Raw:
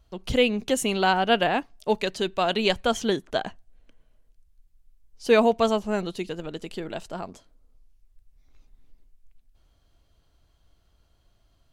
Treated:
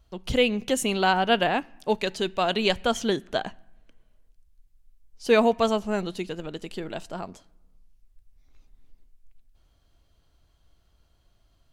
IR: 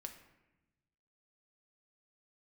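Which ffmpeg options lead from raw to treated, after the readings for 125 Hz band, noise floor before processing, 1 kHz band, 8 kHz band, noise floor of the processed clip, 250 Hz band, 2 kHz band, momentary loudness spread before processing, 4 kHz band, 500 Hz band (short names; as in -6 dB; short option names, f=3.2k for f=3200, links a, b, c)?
0.0 dB, -65 dBFS, -0.5 dB, 0.0 dB, -65 dBFS, -0.5 dB, 0.0 dB, 15 LU, 0.0 dB, -1.0 dB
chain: -filter_complex "[0:a]asplit=2[a][b];[b]equalizer=f=480:t=o:w=1.2:g=-7.5[c];[1:a]atrim=start_sample=2205[d];[c][d]afir=irnorm=-1:irlink=0,volume=-9.5dB[e];[a][e]amix=inputs=2:normalize=0,volume=-1.5dB"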